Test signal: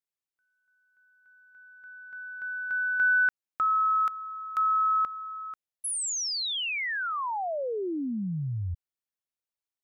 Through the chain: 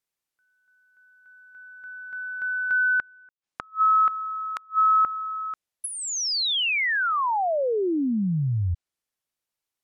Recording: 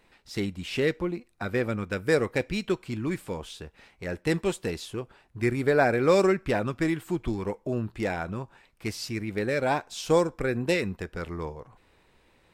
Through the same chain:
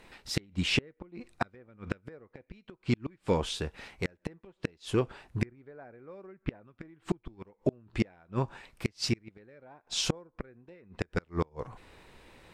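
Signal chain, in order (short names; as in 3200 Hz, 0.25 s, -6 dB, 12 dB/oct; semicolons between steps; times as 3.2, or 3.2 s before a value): treble ducked by the level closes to 1700 Hz, closed at -22 dBFS; flipped gate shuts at -22 dBFS, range -34 dB; gain +7 dB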